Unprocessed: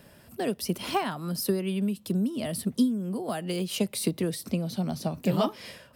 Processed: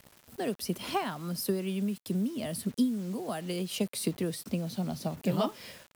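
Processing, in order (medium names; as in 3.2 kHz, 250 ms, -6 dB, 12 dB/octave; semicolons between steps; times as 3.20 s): bit crusher 8-bit; trim -3.5 dB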